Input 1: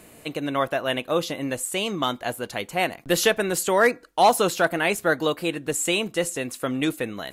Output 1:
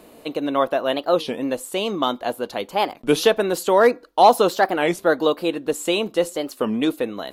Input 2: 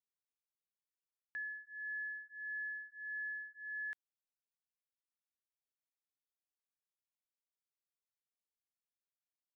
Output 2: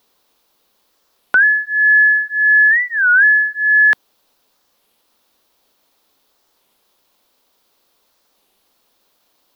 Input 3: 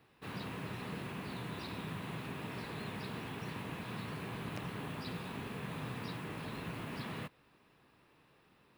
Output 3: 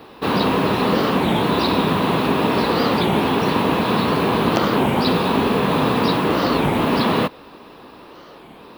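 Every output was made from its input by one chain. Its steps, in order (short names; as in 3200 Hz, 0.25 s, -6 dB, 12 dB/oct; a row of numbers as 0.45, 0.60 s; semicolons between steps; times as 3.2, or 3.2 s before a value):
graphic EQ 125/250/500/1000/2000/4000/8000 Hz -8/+5/+5/+5/-5/+5/-7 dB; record warp 33 1/3 rpm, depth 250 cents; normalise peaks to -3 dBFS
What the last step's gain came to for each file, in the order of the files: -0.5, +33.5, +22.5 dB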